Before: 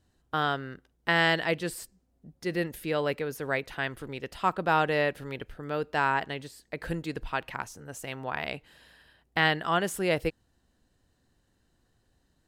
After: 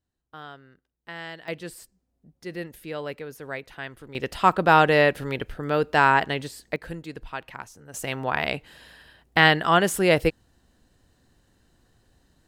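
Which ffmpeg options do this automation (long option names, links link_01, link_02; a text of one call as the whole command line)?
ffmpeg -i in.wav -af "asetnsamples=nb_out_samples=441:pad=0,asendcmd='1.48 volume volume -4.5dB;4.15 volume volume 8dB;6.76 volume volume -3dB;7.94 volume volume 7.5dB',volume=-14dB" out.wav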